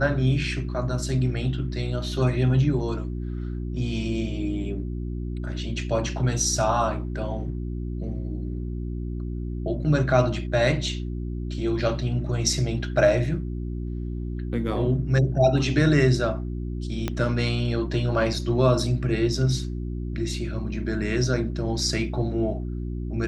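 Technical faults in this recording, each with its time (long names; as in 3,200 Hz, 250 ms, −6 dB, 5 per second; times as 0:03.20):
mains hum 60 Hz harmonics 6 −30 dBFS
0:17.08: click −12 dBFS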